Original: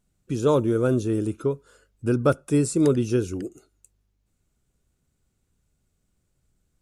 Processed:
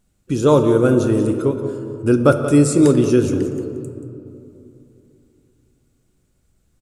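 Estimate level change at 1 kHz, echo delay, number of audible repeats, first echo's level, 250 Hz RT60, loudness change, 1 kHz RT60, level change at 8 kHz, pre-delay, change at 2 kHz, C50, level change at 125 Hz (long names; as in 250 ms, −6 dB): +7.5 dB, 181 ms, 1, −12.0 dB, 3.5 s, +7.0 dB, 2.8 s, +7.0 dB, 4 ms, +8.0 dB, 7.0 dB, +6.5 dB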